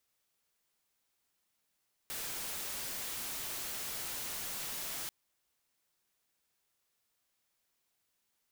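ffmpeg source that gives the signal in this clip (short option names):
-f lavfi -i "anoisesrc=c=white:a=0.0173:d=2.99:r=44100:seed=1"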